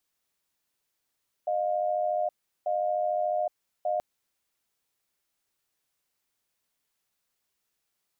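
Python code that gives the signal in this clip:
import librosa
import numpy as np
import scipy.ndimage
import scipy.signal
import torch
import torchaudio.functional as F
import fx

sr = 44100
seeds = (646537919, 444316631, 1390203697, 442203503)

y = fx.cadence(sr, length_s=2.53, low_hz=616.0, high_hz=710.0, on_s=0.82, off_s=0.37, level_db=-27.5)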